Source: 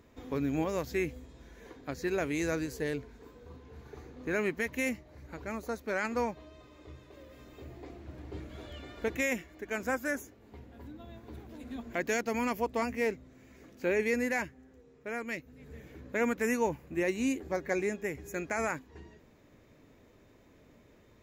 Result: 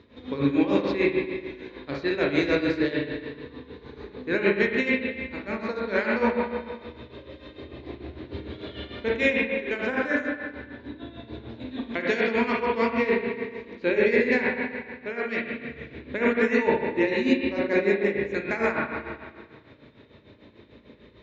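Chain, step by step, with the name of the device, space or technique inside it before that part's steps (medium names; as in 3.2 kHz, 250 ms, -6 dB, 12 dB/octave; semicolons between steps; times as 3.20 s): combo amplifier with spring reverb and tremolo (spring tank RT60 1.7 s, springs 35/55 ms, chirp 25 ms, DRR -3 dB; tremolo 6.7 Hz, depth 70%; cabinet simulation 81–4200 Hz, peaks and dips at 160 Hz -8 dB, 730 Hz -8 dB, 1.3 kHz -4 dB, 3.9 kHz +10 dB); trim +8 dB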